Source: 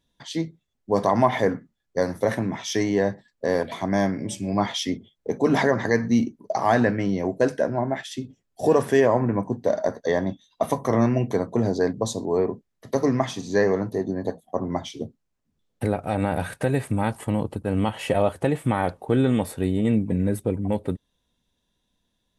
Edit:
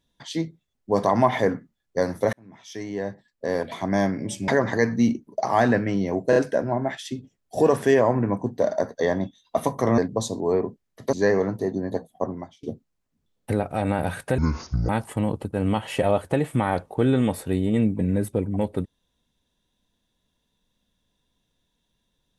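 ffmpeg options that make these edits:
-filter_complex "[0:a]asplit=10[s0][s1][s2][s3][s4][s5][s6][s7][s8][s9];[s0]atrim=end=2.33,asetpts=PTS-STARTPTS,afade=t=out:st=2.326:d=0.004:c=hsin[s10];[s1]atrim=start=2.33:end=4.482,asetpts=PTS-STARTPTS,afade=t=in:d=1.62[s11];[s2]atrim=start=5.598:end=7.452[s12];[s3]atrim=start=7.418:end=7.452[s13];[s4]atrim=start=7.418:end=11.042[s14];[s5]atrim=start=11.828:end=12.982[s15];[s6]atrim=start=13.458:end=14.96,asetpts=PTS-STARTPTS,afade=t=out:st=1.112:d=0.39:c=qua:silence=0.0668344[s16];[s7]atrim=start=14.96:end=16.714,asetpts=PTS-STARTPTS,afade=t=in:d=0.004:c=hsin:silence=0.0668344[s17];[s8]atrim=start=16.71:end=17,asetpts=PTS-STARTPTS,asetrate=25137,aresample=44100[s18];[s9]atrim=start=16.996[s19];[s10][s11]concat=n=2:v=0:a=1[s20];[s20][s12]acrossfade=d=0.004:c1=hsin:c2=hsin[s21];[s21][s13]acrossfade=d=0.004:c1=hsin:c2=hsin[s22];[s22][s14]acrossfade=d=0.004:c1=hsin:c2=hsin[s23];[s23][s15]acrossfade=d=0.004:c1=hsin:c2=hsin[s24];[s16][s17]concat=n=2:v=0:a=1[s25];[s24][s25]acrossfade=d=0.004:c1=hsin:c2=hsin[s26];[s26][s18]acrossfade=d=0.004:c1=hsin:c2=hsin[s27];[s27][s19]acrossfade=d=0.004:c1=hsin:c2=hsin"

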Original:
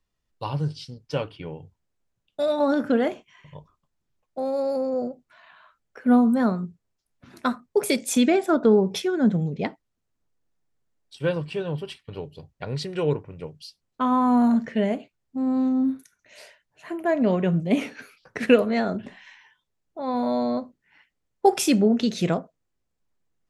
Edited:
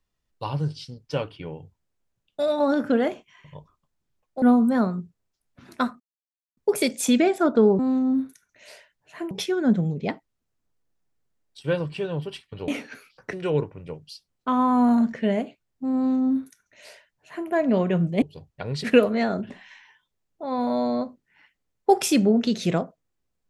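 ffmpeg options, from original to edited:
-filter_complex "[0:a]asplit=9[s0][s1][s2][s3][s4][s5][s6][s7][s8];[s0]atrim=end=4.422[s9];[s1]atrim=start=6.068:end=7.65,asetpts=PTS-STARTPTS,afade=t=out:st=1.578:d=0.004:c=hsin,apad=pad_dur=0.57[s10];[s2]atrim=start=7.65:end=8.872,asetpts=PTS-STARTPTS,afade=t=in:d=0.004:c=hsin[s11];[s3]atrim=start=15.488:end=17.012[s12];[s4]atrim=start=8.868:end=12.242[s13];[s5]atrim=start=17.748:end=18.402[s14];[s6]atrim=start=12.858:end=17.752[s15];[s7]atrim=start=12.238:end=12.862[s16];[s8]atrim=start=18.398[s17];[s10][s11]concat=n=2:v=0:a=1[s18];[s9][s18]acrossfade=d=0.004:c1=hsin:c2=hsin[s19];[s19][s12]acrossfade=d=0.004:c1=hsin:c2=hsin[s20];[s20][s13]acrossfade=d=0.004:c1=hsin:c2=hsin[s21];[s21][s14]acrossfade=d=0.004:c1=hsin:c2=hsin[s22];[s22][s15]acrossfade=d=0.004:c1=hsin:c2=hsin[s23];[s23][s16]acrossfade=d=0.004:c1=hsin:c2=hsin[s24];[s24][s17]acrossfade=d=0.004:c1=hsin:c2=hsin"

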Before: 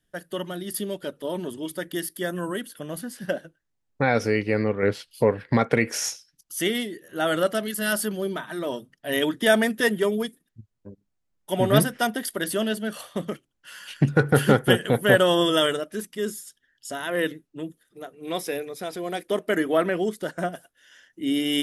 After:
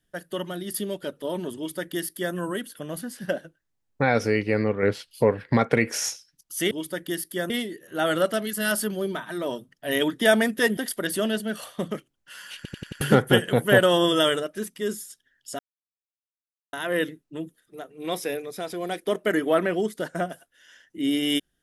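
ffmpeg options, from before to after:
-filter_complex "[0:a]asplit=10[s0][s1][s2][s3][s4][s5][s6][s7][s8][s9];[s0]atrim=end=6.712[s10];[s1]atrim=start=1.558:end=2.352[s11];[s2]atrim=start=6.708:end=9.982[s12];[s3]atrim=start=12.138:end=14.022[s13];[s4]atrim=start=13.928:end=14.022[s14];[s5]atrim=start=13.928:end=14.022[s15];[s6]atrim=start=13.928:end=14.022[s16];[s7]atrim=start=13.928:end=14.022[s17];[s8]atrim=start=14.378:end=16.96,asetpts=PTS-STARTPTS,afade=t=out:st=2.578:d=0.004:c=hsin,apad=pad_dur=1.14[s18];[s9]atrim=start=16.96,asetpts=PTS-STARTPTS,afade=t=in:d=0.004:c=hsin[s19];[s10][s11]acrossfade=d=0.004:c1=hsin:c2=hsin[s20];[s20][s12]acrossfade=d=0.004:c1=hsin:c2=hsin[s21];[s21][s13]acrossfade=d=0.004:c1=hsin:c2=hsin[s22];[s22][s14]acrossfade=d=0.004:c1=hsin:c2=hsin[s23];[s23][s15]acrossfade=d=0.004:c1=hsin:c2=hsin[s24];[s24][s16]acrossfade=d=0.004:c1=hsin:c2=hsin[s25];[s25][s17]acrossfade=d=0.004:c1=hsin:c2=hsin[s26];[s18][s19]concat=n=2:v=0:a=1[s27];[s26][s27]acrossfade=d=0.004:c1=hsin:c2=hsin"

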